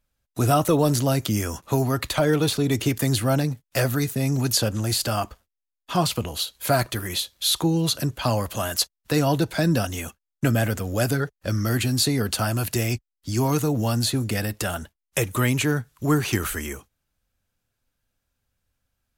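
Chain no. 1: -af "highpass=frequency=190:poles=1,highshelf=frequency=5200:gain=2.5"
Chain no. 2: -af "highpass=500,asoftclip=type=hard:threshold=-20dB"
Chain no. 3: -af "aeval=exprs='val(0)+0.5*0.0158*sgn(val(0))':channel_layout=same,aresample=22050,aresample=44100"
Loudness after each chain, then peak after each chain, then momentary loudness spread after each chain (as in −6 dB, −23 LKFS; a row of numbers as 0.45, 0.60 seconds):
−24.5, −28.5, −23.5 LKFS; −7.0, −20.0, −8.5 dBFS; 8, 7, 7 LU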